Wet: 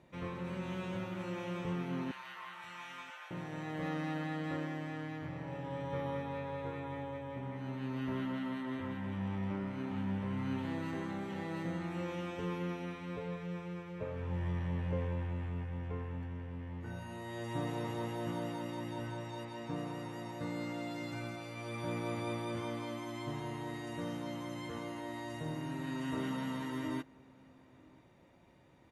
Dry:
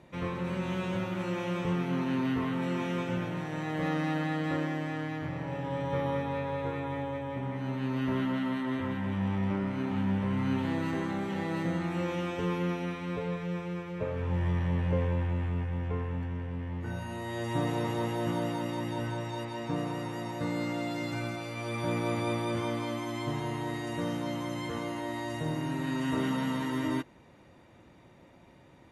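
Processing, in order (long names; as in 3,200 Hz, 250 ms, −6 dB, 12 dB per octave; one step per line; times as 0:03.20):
0:02.11–0:03.31: high-pass filter 890 Hz 24 dB per octave
slap from a distant wall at 170 metres, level −24 dB
level −7 dB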